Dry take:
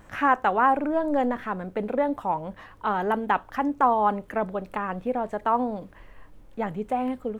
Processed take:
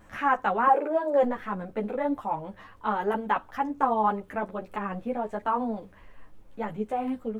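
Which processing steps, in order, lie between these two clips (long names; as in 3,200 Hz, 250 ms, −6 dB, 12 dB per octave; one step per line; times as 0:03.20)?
0:00.67–0:01.23: high-pass with resonance 430 Hz, resonance Q 4.9
string-ensemble chorus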